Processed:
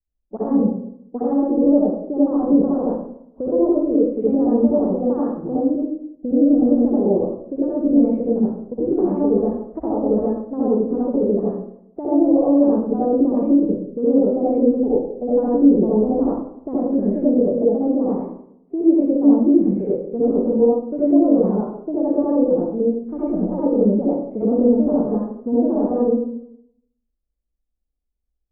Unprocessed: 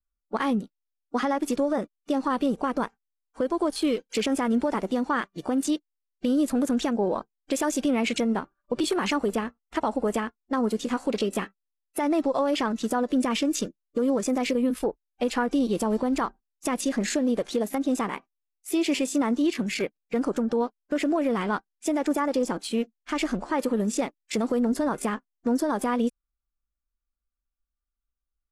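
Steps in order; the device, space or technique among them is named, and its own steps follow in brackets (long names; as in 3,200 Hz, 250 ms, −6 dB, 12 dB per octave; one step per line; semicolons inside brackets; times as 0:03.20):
0:07.09–0:08.86: parametric band 890 Hz −7 dB 1.3 octaves
next room (low-pass filter 640 Hz 24 dB per octave; convolution reverb RT60 0.70 s, pre-delay 58 ms, DRR −8 dB)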